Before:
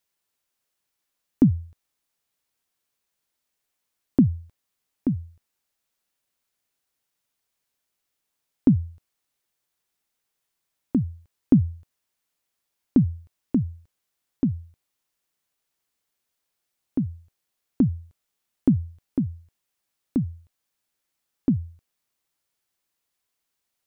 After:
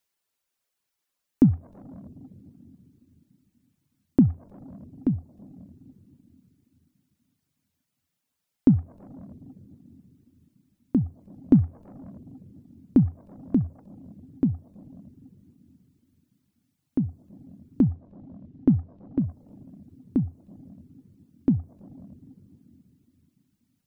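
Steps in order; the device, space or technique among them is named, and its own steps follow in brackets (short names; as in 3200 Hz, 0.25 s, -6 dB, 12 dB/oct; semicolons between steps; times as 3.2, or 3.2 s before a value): saturated reverb return (on a send at -10 dB: reverb RT60 3.0 s, pre-delay 14 ms + soft clip -26.5 dBFS, distortion -9 dB); on the sum: reverb removal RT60 0.75 s; 17.84–19.19 air absorption 170 m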